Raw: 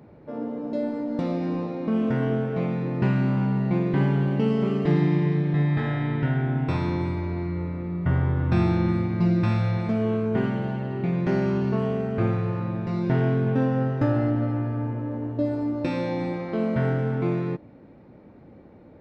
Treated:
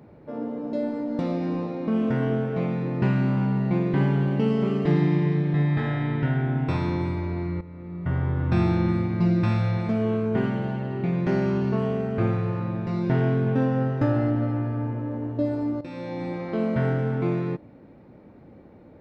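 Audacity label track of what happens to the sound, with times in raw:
7.610000	8.820000	fade in equal-power, from −14.5 dB
15.810000	16.480000	fade in, from −14.5 dB

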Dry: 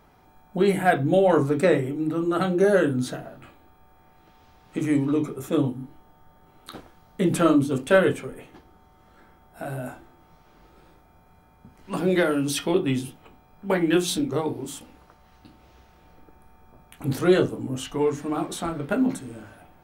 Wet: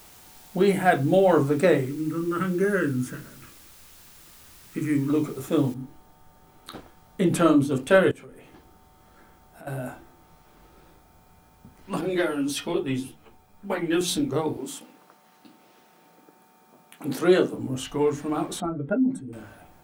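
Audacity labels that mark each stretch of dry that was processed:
1.850000	5.100000	phaser with its sweep stopped centre 1,700 Hz, stages 4
5.740000	5.740000	noise floor change −51 dB −67 dB
8.110000	9.670000	downward compressor 3 to 1, threshold −45 dBFS
12.010000	14.010000	string-ensemble chorus
14.570000	17.540000	high-pass filter 180 Hz 24 dB per octave
18.600000	19.330000	expanding power law on the bin magnitudes exponent 1.7

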